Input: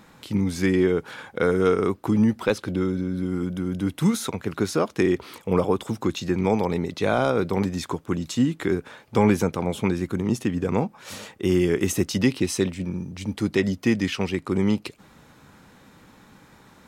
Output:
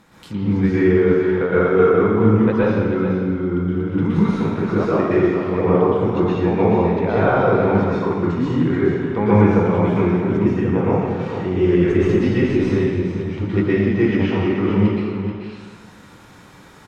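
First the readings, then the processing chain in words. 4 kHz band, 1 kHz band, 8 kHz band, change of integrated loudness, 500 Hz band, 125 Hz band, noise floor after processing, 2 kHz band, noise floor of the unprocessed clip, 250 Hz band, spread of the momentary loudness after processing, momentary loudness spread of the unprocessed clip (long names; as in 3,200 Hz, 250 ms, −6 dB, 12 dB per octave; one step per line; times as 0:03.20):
−4.0 dB, +7.0 dB, below −15 dB, +6.5 dB, +7.5 dB, +8.0 dB, −44 dBFS, +5.0 dB, −53 dBFS, +6.0 dB, 7 LU, 7 LU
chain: stylus tracing distortion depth 0.039 ms
on a send: single-tap delay 432 ms −8.5 dB
on the sum: dense smooth reverb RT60 1.3 s, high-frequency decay 0.95×, pre-delay 105 ms, DRR −9 dB
treble cut that deepens with the level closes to 1,900 Hz, closed at −20 dBFS
level −2.5 dB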